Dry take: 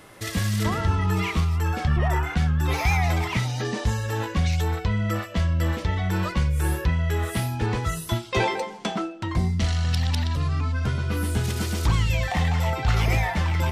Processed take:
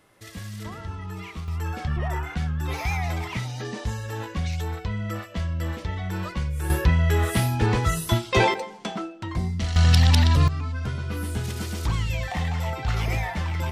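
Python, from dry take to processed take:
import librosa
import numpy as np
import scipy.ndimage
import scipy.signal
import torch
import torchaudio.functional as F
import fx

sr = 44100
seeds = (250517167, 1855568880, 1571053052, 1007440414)

y = fx.gain(x, sr, db=fx.steps((0.0, -12.0), (1.48, -5.0), (6.7, 3.5), (8.54, -3.5), (9.76, 7.0), (10.48, -4.0)))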